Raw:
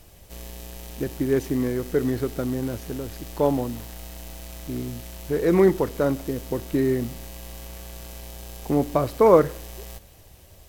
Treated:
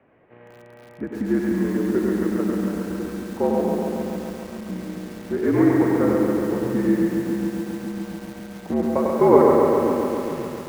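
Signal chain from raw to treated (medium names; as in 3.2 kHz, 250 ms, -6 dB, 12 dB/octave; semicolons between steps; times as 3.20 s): two-band feedback delay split 310 Hz, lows 547 ms, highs 97 ms, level -3.5 dB; mistuned SSB -62 Hz 200–2200 Hz; bit-crushed delay 138 ms, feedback 80%, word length 7-bit, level -3.5 dB; trim -1 dB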